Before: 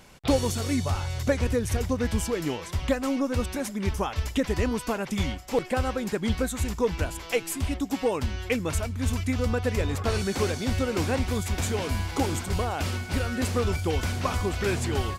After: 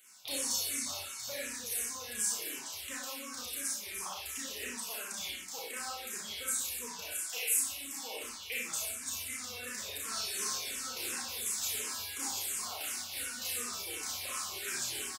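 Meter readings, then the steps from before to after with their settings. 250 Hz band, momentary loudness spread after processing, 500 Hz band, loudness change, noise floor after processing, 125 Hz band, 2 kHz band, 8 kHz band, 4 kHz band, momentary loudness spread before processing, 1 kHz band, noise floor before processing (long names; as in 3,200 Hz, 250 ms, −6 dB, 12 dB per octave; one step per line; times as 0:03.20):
−23.5 dB, 7 LU, −21.0 dB, −7.5 dB, −44 dBFS, −33.0 dB, −7.5 dB, +4.0 dB, −1.5 dB, 3 LU, −13.0 dB, −40 dBFS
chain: first difference
on a send: ambience of single reflections 32 ms −3.5 dB, 58 ms −5.5 dB
on the sum: four-comb reverb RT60 0.68 s, combs from 29 ms, DRR −2 dB
frequency shifter mixed with the dry sound −2.8 Hz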